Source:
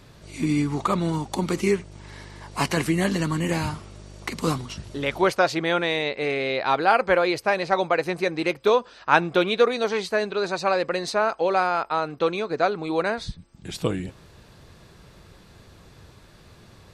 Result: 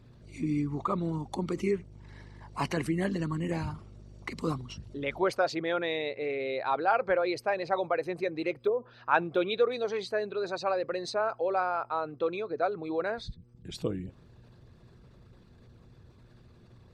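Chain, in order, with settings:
spectral envelope exaggerated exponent 1.5
0:08.53–0:09.11: treble cut that deepens with the level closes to 470 Hz, closed at −15 dBFS
hum with harmonics 120 Hz, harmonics 4, −54 dBFS −8 dB per octave
level −7 dB

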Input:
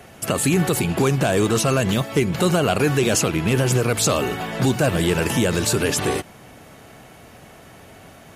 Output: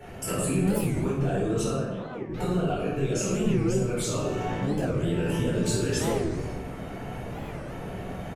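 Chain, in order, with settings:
spectral envelope exaggerated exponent 1.5
echo with shifted repeats 91 ms, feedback 61%, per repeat −150 Hz, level −17 dB
downward compressor 4 to 1, threshold −30 dBFS, peak gain reduction 13.5 dB
0:03.19–0:03.86: comb filter 5.3 ms, depth 99%
speech leveller within 5 dB 2 s
0:01.68–0:02.31: resonant band-pass 810 Hz, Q 0.9
rectangular room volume 460 cubic metres, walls mixed, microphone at 4.3 metres
wow of a warped record 45 rpm, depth 250 cents
level −8.5 dB

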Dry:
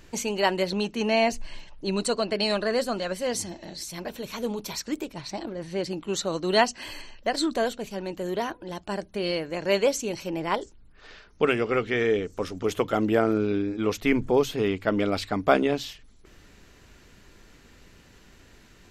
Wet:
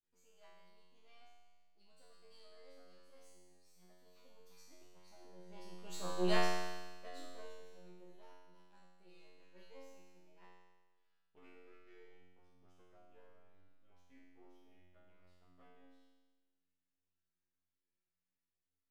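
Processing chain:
gain on one half-wave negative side −12 dB
source passing by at 0:06.22, 14 m/s, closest 2.6 metres
tuned comb filter 90 Hz, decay 1.3 s, harmonics all, mix 100%
level +8.5 dB

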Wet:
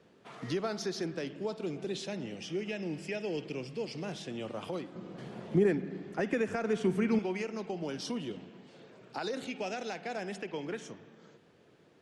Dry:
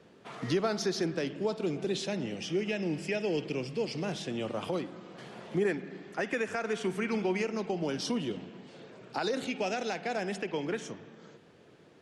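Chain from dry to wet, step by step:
0:04.95–0:07.19: low-shelf EQ 480 Hz +11.5 dB
level −4.5 dB

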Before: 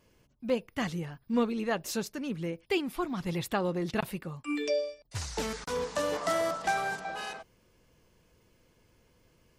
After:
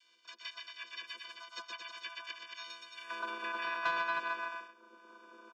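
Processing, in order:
on a send: bouncing-ball delay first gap 210 ms, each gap 0.85×, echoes 5
on the sum: dynamic equaliser 4,000 Hz, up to −6 dB, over −52 dBFS, Q 1.1
in parallel at +1 dB: downward compressor, threshold −41 dBFS, peak gain reduction 18 dB
on the sum: ring modulation 220 Hz
channel vocoder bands 32, square 193 Hz
high-pass filter sweep 1,800 Hz → 420 Hz, 0:05.09–0:05.67
pitch-shifted copies added −7 semitones −10 dB, +3 semitones −8 dB, +7 semitones −2 dB
soft clipping −19 dBFS, distortion −14 dB
high-frequency loss of the air 320 metres
wrong playback speed 45 rpm record played at 78 rpm
multiband upward and downward compressor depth 40%
level −3.5 dB

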